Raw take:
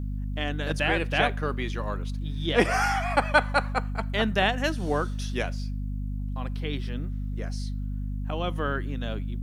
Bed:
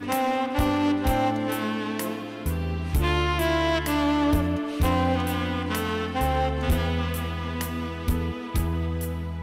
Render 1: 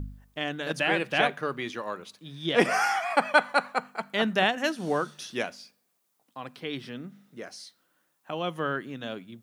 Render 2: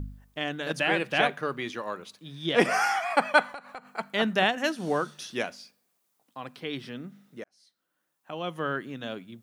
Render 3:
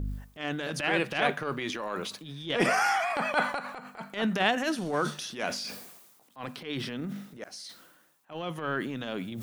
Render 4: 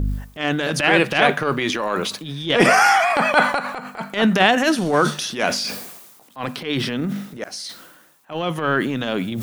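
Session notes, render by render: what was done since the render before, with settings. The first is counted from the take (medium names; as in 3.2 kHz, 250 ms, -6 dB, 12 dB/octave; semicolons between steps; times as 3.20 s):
de-hum 50 Hz, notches 5
3.46–3.97 s: compression 12:1, threshold -36 dBFS; 7.44–8.78 s: fade in
reverse; upward compressor, threshold -27 dBFS; reverse; transient shaper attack -12 dB, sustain +5 dB
trim +11.5 dB; peak limiter -1 dBFS, peak gain reduction 3 dB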